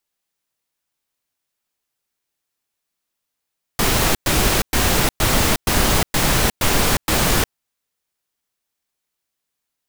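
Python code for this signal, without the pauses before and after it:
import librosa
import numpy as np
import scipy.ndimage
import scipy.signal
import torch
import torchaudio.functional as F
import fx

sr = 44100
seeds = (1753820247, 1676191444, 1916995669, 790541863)

y = fx.noise_burst(sr, seeds[0], colour='pink', on_s=0.36, off_s=0.11, bursts=8, level_db=-16.5)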